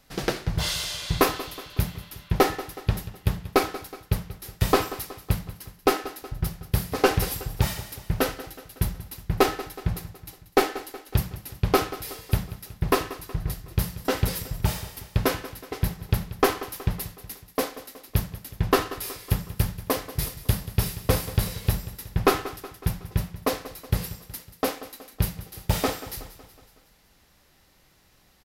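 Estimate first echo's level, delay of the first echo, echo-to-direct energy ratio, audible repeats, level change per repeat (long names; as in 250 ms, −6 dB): −15.5 dB, 185 ms, −14.0 dB, 4, −5.5 dB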